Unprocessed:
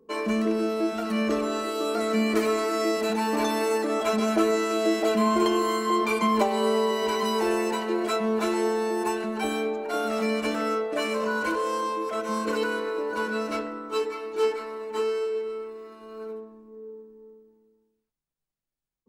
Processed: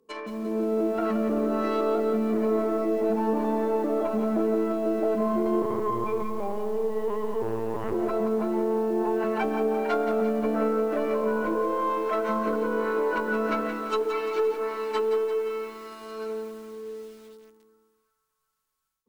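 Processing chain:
stylus tracing distortion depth 0.13 ms
treble cut that deepens with the level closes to 650 Hz, closed at −23 dBFS
0:05.62–0:07.94: linear-prediction vocoder at 8 kHz pitch kept
low-shelf EQ 79 Hz +8.5 dB
brickwall limiter −21 dBFS, peak gain reduction 11 dB
spectral tilt +2.5 dB per octave
feedback echo with a band-pass in the loop 372 ms, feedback 67%, band-pass 1,400 Hz, level −23 dB
automatic gain control gain up to 11 dB
feedback echo at a low word length 173 ms, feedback 55%, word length 7 bits, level −8 dB
level −5.5 dB

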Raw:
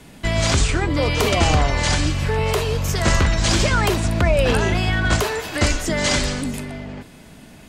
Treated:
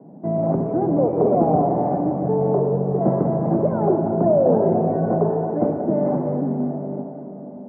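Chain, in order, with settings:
elliptic band-pass filter 160–760 Hz, stop band 60 dB
on a send: convolution reverb RT60 3.7 s, pre-delay 48 ms, DRR 3 dB
on the sum: level +3.5 dB

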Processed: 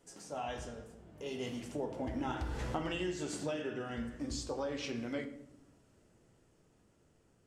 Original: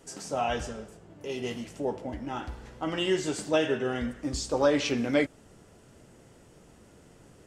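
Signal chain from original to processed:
source passing by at 0:02.68, 9 m/s, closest 1.9 metres
downward compressor 10 to 1, threshold −45 dBFS, peak gain reduction 17.5 dB
on a send: convolution reverb RT60 0.75 s, pre-delay 11 ms, DRR 7.5 dB
on the sum: level +10.5 dB

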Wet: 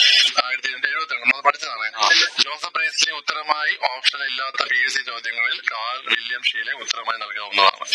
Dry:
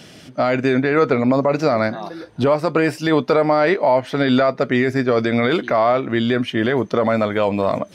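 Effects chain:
spectral magnitudes quantised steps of 30 dB
flat-topped band-pass 3,600 Hz, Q 0.88
gate with flip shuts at −26 dBFS, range −27 dB
boost into a limiter +35 dB
0:04.54–0:04.97: envelope flattener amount 70%
level −1 dB

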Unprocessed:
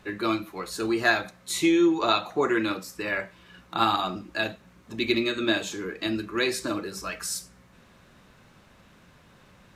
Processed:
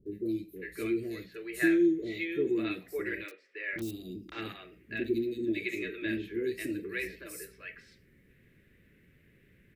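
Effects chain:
drawn EQ curve 140 Hz 0 dB, 200 Hz −3 dB, 420 Hz +5 dB, 860 Hz −26 dB, 1,300 Hz −17 dB, 1,900 Hz +4 dB, 3,800 Hz −10 dB, 6,500 Hz −15 dB, 14,000 Hz +2 dB
0:03.22–0:03.85: bit-depth reduction 6 bits, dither none
three-band delay without the direct sound lows, highs, mids 60/560 ms, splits 490/4,200 Hz
level −5 dB

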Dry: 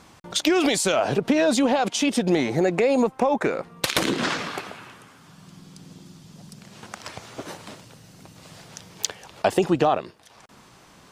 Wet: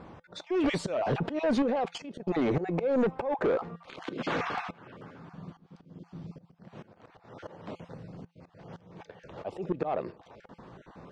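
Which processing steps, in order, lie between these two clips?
time-frequency cells dropped at random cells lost 22%
parametric band 500 Hz +4.5 dB 1.2 octaves
volume swells 329 ms
0:01.62–0:02.20: output level in coarse steps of 14 dB
soft clipping −25 dBFS, distortion −8 dB
head-to-tape spacing loss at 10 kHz 26 dB
tuned comb filter 170 Hz, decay 0.23 s, harmonics odd, mix 40%
one half of a high-frequency compander decoder only
level +8 dB

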